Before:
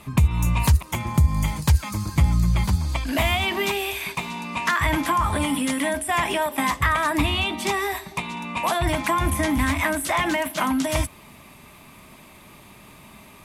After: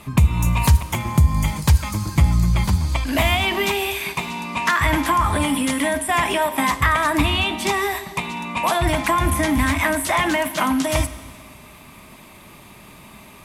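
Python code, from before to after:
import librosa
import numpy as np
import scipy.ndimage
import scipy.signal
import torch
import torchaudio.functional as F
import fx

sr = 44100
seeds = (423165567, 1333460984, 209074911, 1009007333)

y = fx.rev_schroeder(x, sr, rt60_s=1.8, comb_ms=33, drr_db=13.5)
y = y * 10.0 ** (3.0 / 20.0)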